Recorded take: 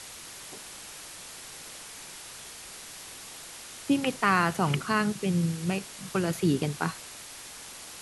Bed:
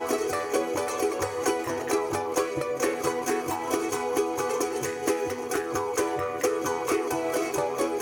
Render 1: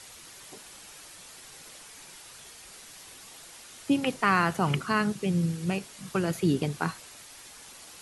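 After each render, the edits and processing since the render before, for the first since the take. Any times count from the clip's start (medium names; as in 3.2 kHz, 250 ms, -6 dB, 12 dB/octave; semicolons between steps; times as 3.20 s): noise reduction 6 dB, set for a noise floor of -45 dBFS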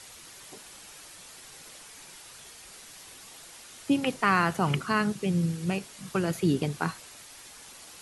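no audible change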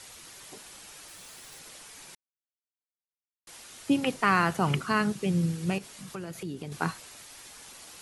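1.08–1.60 s: block-companded coder 3-bit; 2.15–3.47 s: mute; 5.78–6.72 s: compression 2.5:1, threshold -39 dBFS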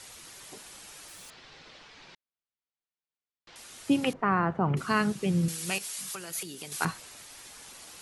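1.30–3.56 s: low-pass 4.6 kHz 24 dB/octave; 4.13–4.77 s: low-pass 1.2 kHz; 5.48–6.85 s: tilt EQ +4 dB/octave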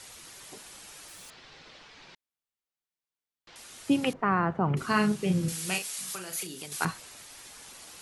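4.78–6.66 s: doubling 38 ms -6 dB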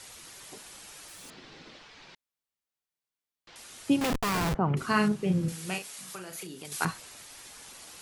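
1.23–1.77 s: small resonant body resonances 210/300 Hz, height 11 dB -> 7 dB, ringing for 25 ms; 4.01–4.55 s: Schmitt trigger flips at -40 dBFS; 5.08–6.65 s: treble shelf 2.4 kHz -8 dB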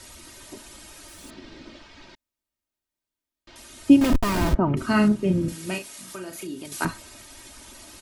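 bass shelf 380 Hz +11.5 dB; comb 3.2 ms, depth 65%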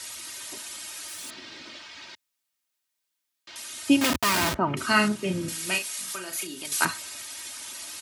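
high-pass 80 Hz 24 dB/octave; tilt shelf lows -8.5 dB, about 780 Hz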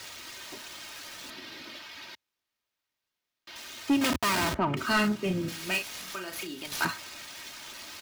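median filter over 5 samples; saturation -19 dBFS, distortion -11 dB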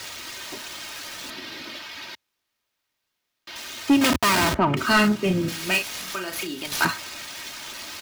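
trim +7 dB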